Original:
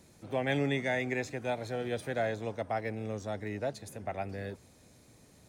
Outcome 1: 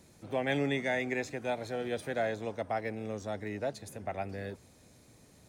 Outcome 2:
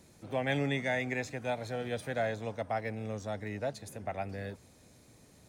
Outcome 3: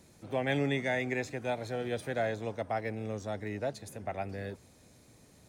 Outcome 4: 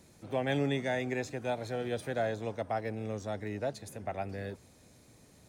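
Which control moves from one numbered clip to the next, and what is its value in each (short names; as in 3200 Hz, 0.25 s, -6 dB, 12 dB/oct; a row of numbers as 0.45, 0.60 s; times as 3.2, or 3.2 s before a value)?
dynamic EQ, frequency: 120, 360, 6000, 2100 Hz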